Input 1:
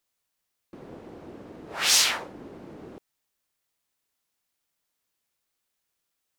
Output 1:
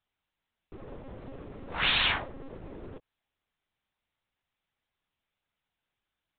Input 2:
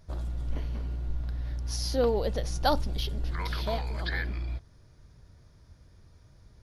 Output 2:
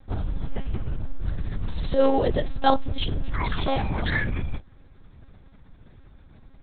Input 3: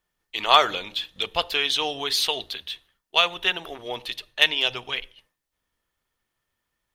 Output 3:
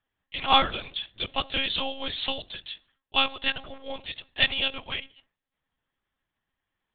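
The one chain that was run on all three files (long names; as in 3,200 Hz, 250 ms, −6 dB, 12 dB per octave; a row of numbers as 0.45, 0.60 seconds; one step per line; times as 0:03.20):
one-pitch LPC vocoder at 8 kHz 270 Hz
loudness normalisation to −27 LKFS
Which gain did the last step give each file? +0.5, +6.5, −3.5 decibels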